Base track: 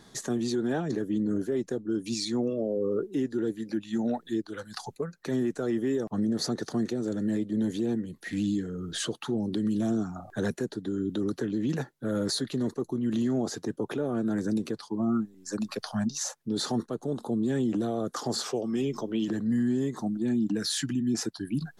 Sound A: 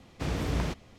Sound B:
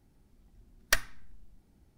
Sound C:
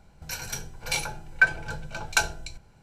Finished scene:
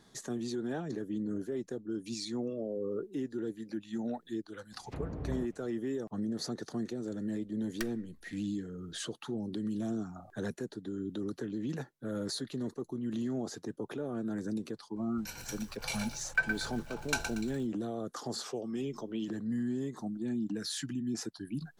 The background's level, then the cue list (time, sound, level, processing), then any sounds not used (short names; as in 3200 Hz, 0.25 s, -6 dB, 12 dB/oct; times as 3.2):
base track -7.5 dB
4.72 add A -8.5 dB + treble ducked by the level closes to 810 Hz, closed at -28.5 dBFS
6.88 add B -14.5 dB
14.96 add C -10 dB + lo-fi delay 0.117 s, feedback 35%, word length 7-bit, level -6.5 dB